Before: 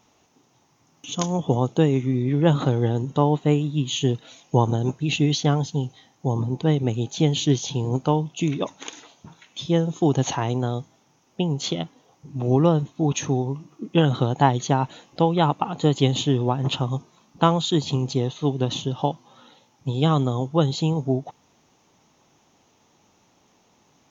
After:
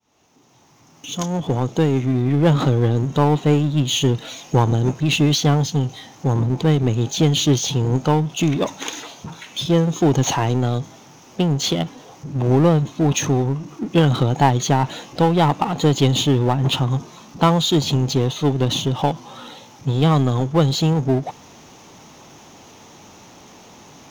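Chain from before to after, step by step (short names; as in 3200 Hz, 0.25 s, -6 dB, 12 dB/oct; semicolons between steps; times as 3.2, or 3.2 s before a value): opening faded in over 2.64 s; power-law curve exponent 0.7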